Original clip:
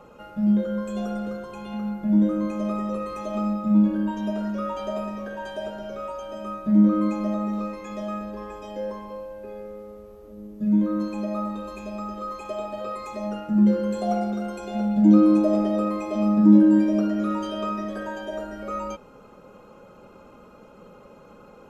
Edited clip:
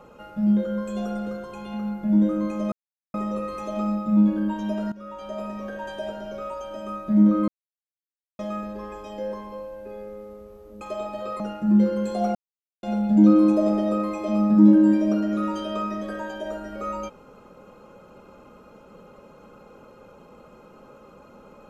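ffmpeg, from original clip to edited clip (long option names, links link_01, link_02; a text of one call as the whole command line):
ffmpeg -i in.wav -filter_complex "[0:a]asplit=9[link_01][link_02][link_03][link_04][link_05][link_06][link_07][link_08][link_09];[link_01]atrim=end=2.72,asetpts=PTS-STARTPTS,afade=type=out:start_time=2.716:duration=0.004:curve=hsin,apad=pad_dur=0.42[link_10];[link_02]atrim=start=2.72:end=4.5,asetpts=PTS-STARTPTS,afade=type=in:duration=0.004:curve=hsin,afade=type=out:start_time=1.776:duration=0.004:curve=hsin:silence=0.149624[link_11];[link_03]atrim=start=4.5:end=7.06,asetpts=PTS-STARTPTS,afade=type=in:duration=0.74:silence=0.149624,afade=type=out:start_time=2.556:duration=0.004:curve=hsin[link_12];[link_04]atrim=start=7.06:end=7.97,asetpts=PTS-STARTPTS,volume=0[link_13];[link_05]atrim=start=7.97:end=10.392,asetpts=PTS-STARTPTS,afade=type=in:duration=0.004:curve=hsin[link_14];[link_06]atrim=start=12.398:end=12.992[link_15];[link_07]atrim=start=13.268:end=14.22,asetpts=PTS-STARTPTS,afade=type=out:start_time=0.948:duration=0.004:curve=hsin[link_16];[link_08]atrim=start=14.22:end=14.7,asetpts=PTS-STARTPTS,volume=0[link_17];[link_09]atrim=start=14.7,asetpts=PTS-STARTPTS,afade=type=in:duration=0.004:curve=hsin[link_18];[link_10][link_11][link_12][link_13][link_14]concat=n=5:v=0:a=1[link_19];[link_19][link_15]acrossfade=duration=0.004:curve1=hsin:curve2=hsin[link_20];[link_16][link_17][link_18]concat=n=3:v=0:a=1[link_21];[link_20][link_21]acrossfade=duration=0.004:curve1=hsin:curve2=hsin" out.wav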